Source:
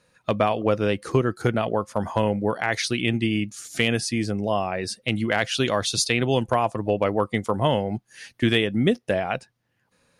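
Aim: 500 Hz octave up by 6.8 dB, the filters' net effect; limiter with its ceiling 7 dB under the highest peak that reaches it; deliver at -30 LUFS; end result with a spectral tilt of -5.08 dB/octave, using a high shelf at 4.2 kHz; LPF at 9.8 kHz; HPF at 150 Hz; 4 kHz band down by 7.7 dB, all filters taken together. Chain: high-pass 150 Hz; low-pass 9.8 kHz; peaking EQ 500 Hz +8.5 dB; peaking EQ 4 kHz -8 dB; treble shelf 4.2 kHz -5 dB; trim -7 dB; peak limiter -17.5 dBFS

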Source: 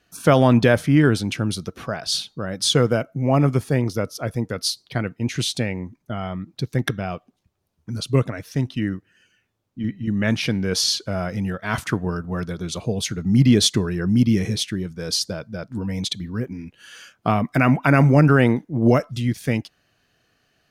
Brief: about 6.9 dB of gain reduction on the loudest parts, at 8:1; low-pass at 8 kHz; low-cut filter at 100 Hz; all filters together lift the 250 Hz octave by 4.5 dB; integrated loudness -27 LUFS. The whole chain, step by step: high-pass 100 Hz; low-pass 8 kHz; peaking EQ 250 Hz +5.5 dB; compression 8:1, threshold -14 dBFS; trim -4.5 dB

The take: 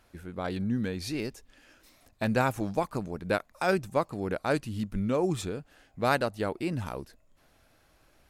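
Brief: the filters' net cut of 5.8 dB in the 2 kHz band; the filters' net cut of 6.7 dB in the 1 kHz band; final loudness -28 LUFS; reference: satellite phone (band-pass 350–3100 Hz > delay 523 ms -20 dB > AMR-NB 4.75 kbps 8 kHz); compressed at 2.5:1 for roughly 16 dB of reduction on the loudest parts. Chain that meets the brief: peaking EQ 1 kHz -8.5 dB; peaking EQ 2 kHz -3.5 dB; compression 2.5:1, threshold -49 dBFS; band-pass 350–3100 Hz; delay 523 ms -20 dB; trim +24 dB; AMR-NB 4.75 kbps 8 kHz

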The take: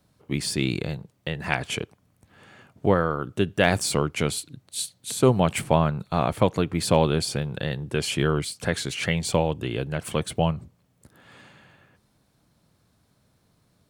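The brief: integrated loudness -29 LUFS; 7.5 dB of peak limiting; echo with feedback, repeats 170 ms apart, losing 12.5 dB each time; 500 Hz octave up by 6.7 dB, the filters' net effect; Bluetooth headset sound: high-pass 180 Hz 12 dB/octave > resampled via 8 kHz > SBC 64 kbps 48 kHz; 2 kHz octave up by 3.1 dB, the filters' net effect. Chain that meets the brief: peaking EQ 500 Hz +8 dB; peaking EQ 2 kHz +3.5 dB; peak limiter -8 dBFS; high-pass 180 Hz 12 dB/octave; feedback delay 170 ms, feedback 24%, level -12.5 dB; resampled via 8 kHz; trim -4.5 dB; SBC 64 kbps 48 kHz

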